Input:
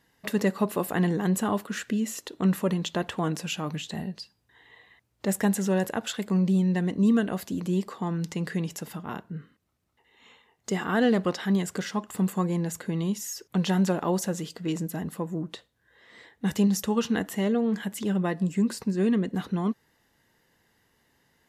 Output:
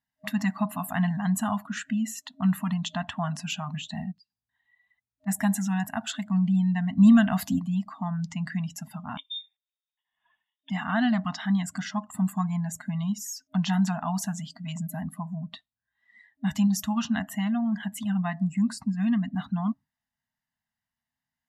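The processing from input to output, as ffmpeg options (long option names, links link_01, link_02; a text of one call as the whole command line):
ffmpeg -i in.wav -filter_complex "[0:a]asplit=3[link_01][link_02][link_03];[link_01]afade=type=out:start_time=4.11:duration=0.02[link_04];[link_02]acompressor=threshold=-54dB:ratio=4:attack=3.2:release=140:knee=1:detection=peak,afade=type=in:start_time=4.11:duration=0.02,afade=type=out:start_time=5.26:duration=0.02[link_05];[link_03]afade=type=in:start_time=5.26:duration=0.02[link_06];[link_04][link_05][link_06]amix=inputs=3:normalize=0,asettb=1/sr,asplit=3[link_07][link_08][link_09];[link_07]atrim=end=6.974[link_10];[link_08]atrim=start=6.97:end=7.59,asetpts=PTS-STARTPTS,afade=type=in:duration=0.004:curve=qsin,afade=type=out:start_time=0.616:duration=0.004:curve=qsin,acontrast=56[link_11];[link_09]atrim=start=7.586[link_12];[link_10][link_11]acrossfade=duration=0.004:curve1=hsin:curve2=qsin[link_13];[link_13][link_12]acrossfade=duration=0.004:curve1=qsin:curve2=hsin,asettb=1/sr,asplit=3[link_14][link_15][link_16];[link_14]atrim=end=9.174[link_17];[link_15]atrim=start=9.17:end=10.7,asetpts=PTS-STARTPTS,afade=type=in:duration=0.004:curve=qsin,afade=type=out:start_time=1.526:duration=0.004:curve=qsin,lowpass=frequency=3200:width_type=q:width=0.5098,lowpass=frequency=3200:width_type=q:width=0.6013,lowpass=frequency=3200:width_type=q:width=0.9,lowpass=frequency=3200:width_type=q:width=2.563,afreqshift=-3800[link_18];[link_16]atrim=start=10.696[link_19];[link_17][link_18]acrossfade=duration=0.004:curve1=hsin:curve2=qsin[link_20];[link_20][link_19]acrossfade=duration=0.004:curve1=qsin:curve2=hsin,afftdn=noise_reduction=22:noise_floor=-44,afftfilt=real='re*(1-between(b*sr/4096,270,620))':imag='im*(1-between(b*sr/4096,270,620))':win_size=4096:overlap=0.75" out.wav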